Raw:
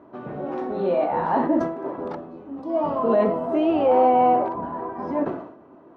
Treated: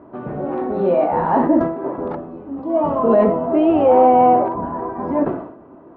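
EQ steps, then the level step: low-pass 2.8 kHz 6 dB/octave; distance through air 200 m; bass shelf 65 Hz +10 dB; +6.0 dB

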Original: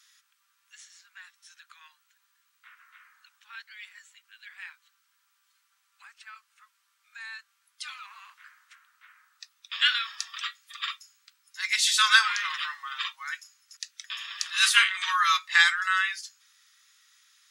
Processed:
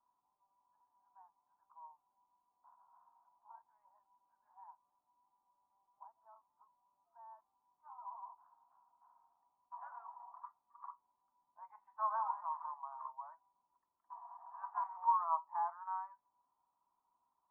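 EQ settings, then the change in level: rippled Chebyshev low-pass 1 kHz, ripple 6 dB; +14.5 dB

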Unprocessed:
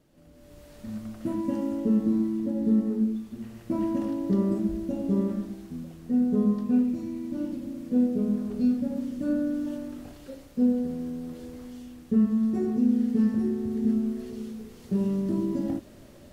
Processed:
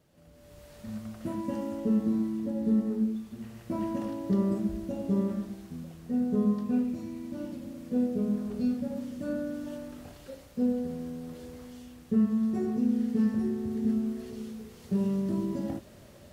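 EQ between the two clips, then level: high-pass 43 Hz; peaking EQ 290 Hz -8.5 dB 0.55 oct; 0.0 dB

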